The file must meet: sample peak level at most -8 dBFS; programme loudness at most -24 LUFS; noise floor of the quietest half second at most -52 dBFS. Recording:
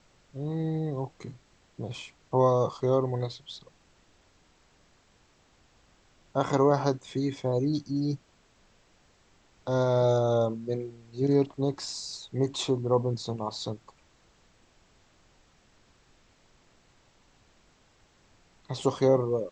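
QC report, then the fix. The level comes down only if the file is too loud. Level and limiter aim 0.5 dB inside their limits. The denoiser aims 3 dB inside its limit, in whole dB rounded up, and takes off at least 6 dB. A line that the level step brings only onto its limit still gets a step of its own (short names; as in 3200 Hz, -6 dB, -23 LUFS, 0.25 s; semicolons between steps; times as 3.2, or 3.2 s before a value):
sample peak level -10.0 dBFS: OK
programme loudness -28.5 LUFS: OK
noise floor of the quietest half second -63 dBFS: OK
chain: none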